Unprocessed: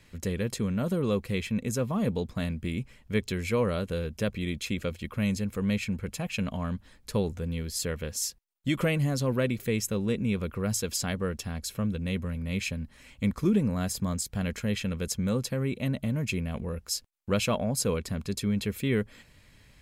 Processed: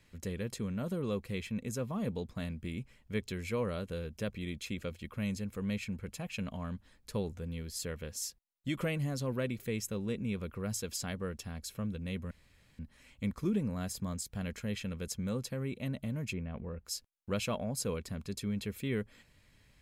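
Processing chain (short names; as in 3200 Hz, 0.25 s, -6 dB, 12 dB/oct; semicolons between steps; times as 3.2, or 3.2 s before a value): 12.31–12.79 room tone; 16.33–16.85 LPF 2200 Hz 12 dB/oct; gain -7.5 dB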